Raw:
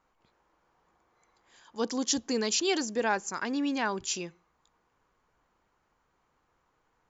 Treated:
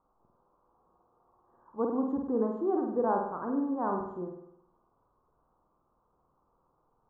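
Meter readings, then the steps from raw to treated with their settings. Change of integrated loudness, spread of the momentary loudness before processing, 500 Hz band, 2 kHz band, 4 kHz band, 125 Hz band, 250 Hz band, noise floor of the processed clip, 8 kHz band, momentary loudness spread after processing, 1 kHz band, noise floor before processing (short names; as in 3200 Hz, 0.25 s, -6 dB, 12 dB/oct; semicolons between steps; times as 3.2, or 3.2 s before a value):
-1.5 dB, 8 LU, +1.5 dB, -16.0 dB, under -40 dB, +1.5 dB, +1.0 dB, -74 dBFS, n/a, 12 LU, +1.0 dB, -74 dBFS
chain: elliptic low-pass 1200 Hz, stop band 50 dB; on a send: flutter echo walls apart 8.6 m, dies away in 0.75 s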